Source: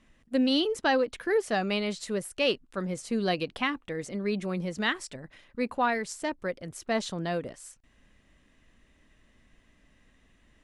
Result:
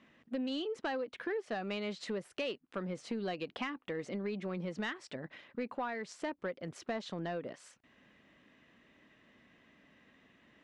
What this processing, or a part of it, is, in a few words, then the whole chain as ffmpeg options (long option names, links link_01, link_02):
AM radio: -af "highpass=170,lowpass=3700,acompressor=threshold=-37dB:ratio=5,asoftclip=type=tanh:threshold=-29dB,volume=2.5dB"